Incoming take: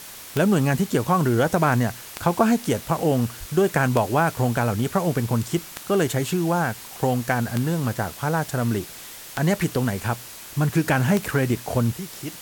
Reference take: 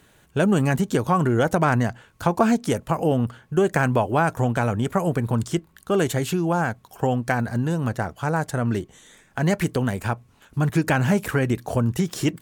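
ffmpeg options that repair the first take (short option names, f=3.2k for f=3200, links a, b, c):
-filter_complex "[0:a]adeclick=t=4,asplit=3[a][b][c];[a]afade=t=out:st=3.39:d=0.02[d];[b]highpass=f=140:w=0.5412,highpass=f=140:w=1.3066,afade=t=in:st=3.39:d=0.02,afade=t=out:st=3.51:d=0.02[e];[c]afade=t=in:st=3.51:d=0.02[f];[d][e][f]amix=inputs=3:normalize=0,afwtdn=0.011,asetnsamples=n=441:p=0,asendcmd='11.93 volume volume 11.5dB',volume=0dB"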